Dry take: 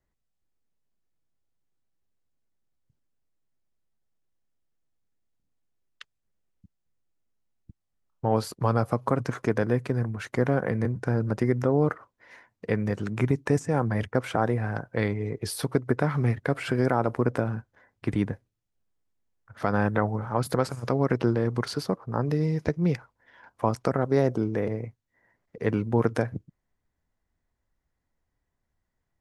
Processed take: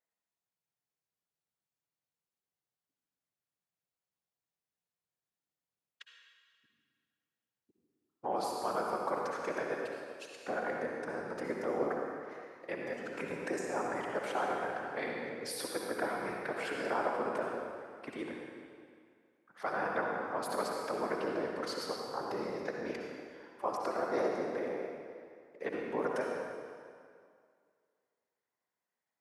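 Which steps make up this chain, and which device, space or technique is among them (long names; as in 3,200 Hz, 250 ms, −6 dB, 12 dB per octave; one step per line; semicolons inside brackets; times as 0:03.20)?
0:09.74–0:10.47: elliptic high-pass filter 2,600 Hz
whispering ghost (random phases in short frames; high-pass filter 470 Hz 12 dB per octave; convolution reverb RT60 2.2 s, pre-delay 54 ms, DRR −0.5 dB)
level −7.5 dB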